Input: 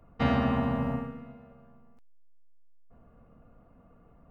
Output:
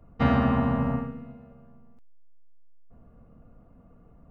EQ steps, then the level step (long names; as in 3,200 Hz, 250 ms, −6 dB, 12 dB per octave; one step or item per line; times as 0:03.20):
low-shelf EQ 490 Hz +7.5 dB
dynamic equaliser 1,300 Hz, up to +6 dB, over −41 dBFS, Q 0.99
−2.5 dB